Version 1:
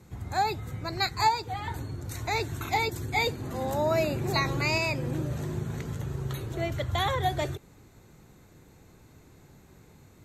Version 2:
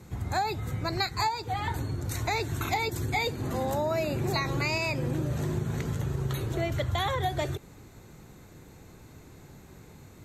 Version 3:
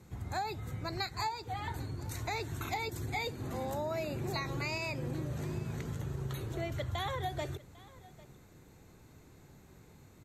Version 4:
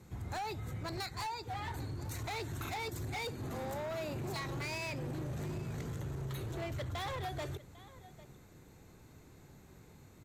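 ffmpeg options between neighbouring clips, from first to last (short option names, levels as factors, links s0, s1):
-af "acompressor=threshold=0.0316:ratio=5,volume=1.68"
-af "aecho=1:1:799:0.0891,volume=0.422"
-af "volume=63.1,asoftclip=hard,volume=0.0158"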